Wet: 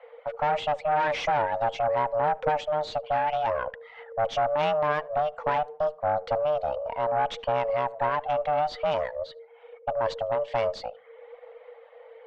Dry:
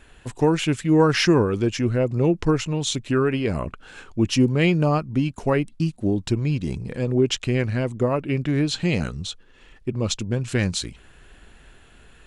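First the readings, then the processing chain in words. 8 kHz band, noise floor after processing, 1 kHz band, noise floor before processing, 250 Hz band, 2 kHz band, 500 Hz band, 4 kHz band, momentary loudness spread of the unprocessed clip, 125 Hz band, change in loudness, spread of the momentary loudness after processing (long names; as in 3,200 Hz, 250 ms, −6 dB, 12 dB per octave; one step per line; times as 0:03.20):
below −20 dB, −51 dBFS, +7.0 dB, −51 dBFS, −23.5 dB, −4.0 dB, −2.0 dB, −10.5 dB, 11 LU, −19.5 dB, −5.0 dB, 12 LU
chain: reverb reduction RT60 0.59 s
low-pass that shuts in the quiet parts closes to 1,900 Hz, open at −14.5 dBFS
soft clipping −23.5 dBFS, distortion −7 dB
frequency shifter +450 Hz
harmonic generator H 2 −10 dB, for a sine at −14.5 dBFS
head-to-tape spacing loss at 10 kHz 33 dB
on a send: tape delay 75 ms, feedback 52%, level −21.5 dB, low-pass 1,300 Hz
on the sum: level +4.5 dB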